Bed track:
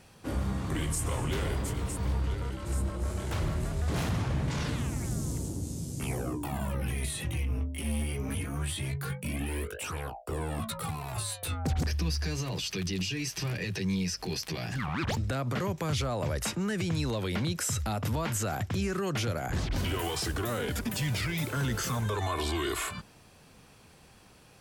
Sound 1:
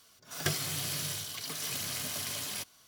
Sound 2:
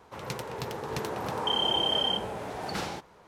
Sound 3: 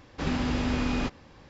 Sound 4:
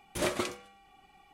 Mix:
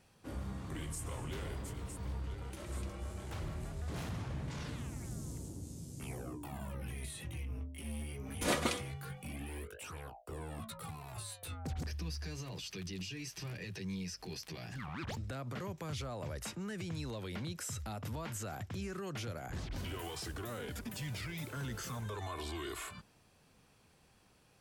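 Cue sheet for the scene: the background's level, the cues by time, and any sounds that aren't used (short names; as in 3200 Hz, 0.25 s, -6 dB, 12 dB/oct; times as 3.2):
bed track -10.5 dB
2.38 add 4 -2 dB + compressor 8:1, threshold -46 dBFS
8.26 add 4 -1.5 dB + comb 4.1 ms, depth 54%
not used: 1, 2, 3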